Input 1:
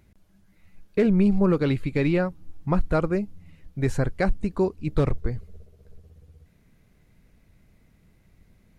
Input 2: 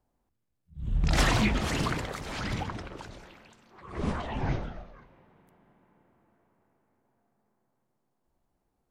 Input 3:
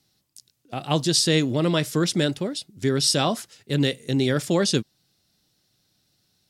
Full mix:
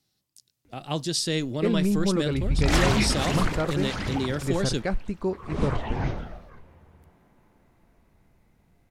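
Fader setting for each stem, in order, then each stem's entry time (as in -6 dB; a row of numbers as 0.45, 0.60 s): -4.5, +2.0, -6.5 dB; 0.65, 1.55, 0.00 s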